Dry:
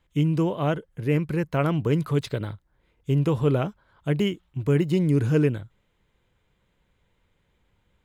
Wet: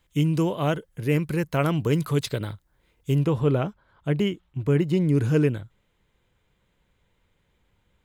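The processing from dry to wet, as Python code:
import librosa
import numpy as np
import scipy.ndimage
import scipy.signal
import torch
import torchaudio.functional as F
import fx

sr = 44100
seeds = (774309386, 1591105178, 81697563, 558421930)

y = fx.high_shelf(x, sr, hz=4200.0, db=fx.steps((0.0, 10.5), (3.23, -3.5), (5.14, 2.5)))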